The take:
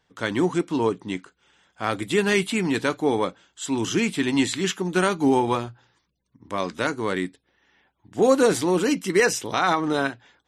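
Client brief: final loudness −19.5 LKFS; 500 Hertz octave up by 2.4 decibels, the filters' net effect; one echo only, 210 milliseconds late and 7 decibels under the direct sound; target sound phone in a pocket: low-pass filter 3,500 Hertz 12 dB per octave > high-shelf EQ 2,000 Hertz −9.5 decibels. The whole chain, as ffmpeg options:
ffmpeg -i in.wav -af "lowpass=3500,equalizer=frequency=500:width_type=o:gain=3.5,highshelf=frequency=2000:gain=-9.5,aecho=1:1:210:0.447,volume=2.5dB" out.wav

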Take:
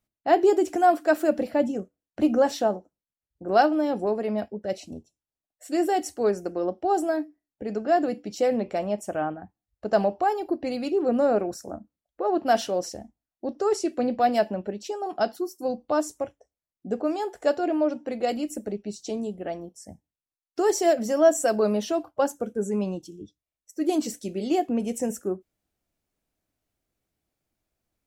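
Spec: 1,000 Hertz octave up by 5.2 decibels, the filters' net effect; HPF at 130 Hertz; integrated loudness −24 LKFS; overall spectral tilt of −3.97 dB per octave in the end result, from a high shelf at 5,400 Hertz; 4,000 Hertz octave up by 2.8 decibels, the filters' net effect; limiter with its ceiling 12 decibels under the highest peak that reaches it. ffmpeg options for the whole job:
ffmpeg -i in.wav -af "highpass=130,equalizer=frequency=1000:width_type=o:gain=8.5,equalizer=frequency=4000:width_type=o:gain=7,highshelf=frequency=5400:gain=-8,volume=2dB,alimiter=limit=-11.5dB:level=0:latency=1" out.wav

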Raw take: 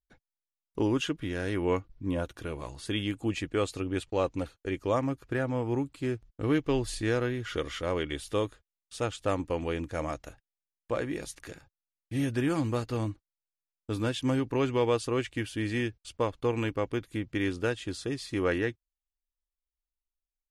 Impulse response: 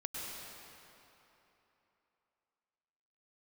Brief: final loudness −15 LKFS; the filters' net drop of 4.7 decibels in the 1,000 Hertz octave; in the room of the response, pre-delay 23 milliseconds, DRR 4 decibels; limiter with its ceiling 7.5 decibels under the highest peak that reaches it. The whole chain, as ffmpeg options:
-filter_complex "[0:a]equalizer=frequency=1000:width_type=o:gain=-6,alimiter=limit=-23dB:level=0:latency=1,asplit=2[link_01][link_02];[1:a]atrim=start_sample=2205,adelay=23[link_03];[link_02][link_03]afir=irnorm=-1:irlink=0,volume=-5.5dB[link_04];[link_01][link_04]amix=inputs=2:normalize=0,volume=18.5dB"

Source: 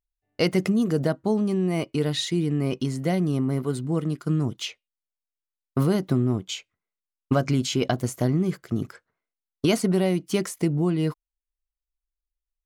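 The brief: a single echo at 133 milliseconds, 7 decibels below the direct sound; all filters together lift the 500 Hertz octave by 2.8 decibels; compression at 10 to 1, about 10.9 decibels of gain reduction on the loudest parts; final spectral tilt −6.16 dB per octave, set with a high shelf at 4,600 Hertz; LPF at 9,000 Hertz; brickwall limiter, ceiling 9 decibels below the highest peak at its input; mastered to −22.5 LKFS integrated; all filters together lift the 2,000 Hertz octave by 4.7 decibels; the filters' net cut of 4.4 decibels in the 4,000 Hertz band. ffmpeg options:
ffmpeg -i in.wav -af "lowpass=9000,equalizer=frequency=500:width_type=o:gain=3.5,equalizer=frequency=2000:width_type=o:gain=8.5,equalizer=frequency=4000:width_type=o:gain=-6.5,highshelf=frequency=4600:gain=-7,acompressor=threshold=-26dB:ratio=10,alimiter=limit=-22dB:level=0:latency=1,aecho=1:1:133:0.447,volume=10dB" out.wav

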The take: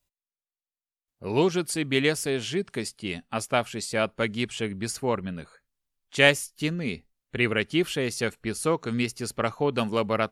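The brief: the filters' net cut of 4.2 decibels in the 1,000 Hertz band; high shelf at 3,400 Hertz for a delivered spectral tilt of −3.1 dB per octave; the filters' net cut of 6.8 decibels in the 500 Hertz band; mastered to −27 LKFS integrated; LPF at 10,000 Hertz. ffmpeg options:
ffmpeg -i in.wav -af "lowpass=10000,equalizer=frequency=500:width_type=o:gain=-8,equalizer=frequency=1000:width_type=o:gain=-4,highshelf=frequency=3400:gain=6.5,volume=0.5dB" out.wav

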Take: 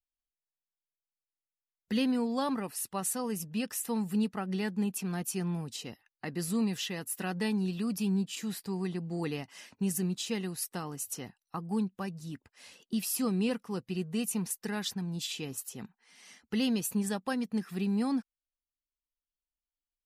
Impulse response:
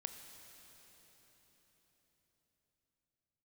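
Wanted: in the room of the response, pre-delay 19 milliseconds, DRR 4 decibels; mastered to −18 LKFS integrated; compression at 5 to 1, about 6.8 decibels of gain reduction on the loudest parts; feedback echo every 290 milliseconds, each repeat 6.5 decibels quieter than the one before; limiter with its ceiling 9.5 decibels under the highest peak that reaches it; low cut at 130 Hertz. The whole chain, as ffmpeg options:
-filter_complex "[0:a]highpass=130,acompressor=threshold=-34dB:ratio=5,alimiter=level_in=8dB:limit=-24dB:level=0:latency=1,volume=-8dB,aecho=1:1:290|580|870|1160|1450|1740:0.473|0.222|0.105|0.0491|0.0231|0.0109,asplit=2[link_01][link_02];[1:a]atrim=start_sample=2205,adelay=19[link_03];[link_02][link_03]afir=irnorm=-1:irlink=0,volume=-1dB[link_04];[link_01][link_04]amix=inputs=2:normalize=0,volume=20.5dB"

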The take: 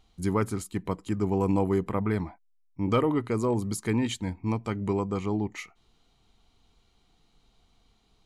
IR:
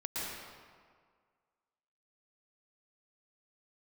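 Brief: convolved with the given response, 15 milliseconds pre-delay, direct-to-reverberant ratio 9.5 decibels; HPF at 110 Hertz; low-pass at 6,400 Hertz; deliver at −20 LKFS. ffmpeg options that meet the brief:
-filter_complex "[0:a]highpass=110,lowpass=6400,asplit=2[link_01][link_02];[1:a]atrim=start_sample=2205,adelay=15[link_03];[link_02][link_03]afir=irnorm=-1:irlink=0,volume=-13.5dB[link_04];[link_01][link_04]amix=inputs=2:normalize=0,volume=9dB"

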